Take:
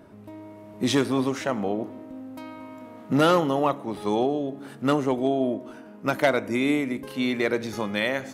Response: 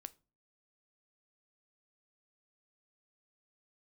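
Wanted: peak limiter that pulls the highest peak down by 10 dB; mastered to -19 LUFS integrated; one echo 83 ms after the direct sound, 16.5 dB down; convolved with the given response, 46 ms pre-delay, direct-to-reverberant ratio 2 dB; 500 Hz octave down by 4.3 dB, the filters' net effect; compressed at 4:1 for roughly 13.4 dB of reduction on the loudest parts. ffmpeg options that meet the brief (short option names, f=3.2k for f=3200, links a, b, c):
-filter_complex "[0:a]equalizer=f=500:t=o:g=-5.5,acompressor=threshold=-34dB:ratio=4,alimiter=level_in=4.5dB:limit=-24dB:level=0:latency=1,volume=-4.5dB,aecho=1:1:83:0.15,asplit=2[a][b];[1:a]atrim=start_sample=2205,adelay=46[c];[b][c]afir=irnorm=-1:irlink=0,volume=4dB[d];[a][d]amix=inputs=2:normalize=0,volume=18.5dB"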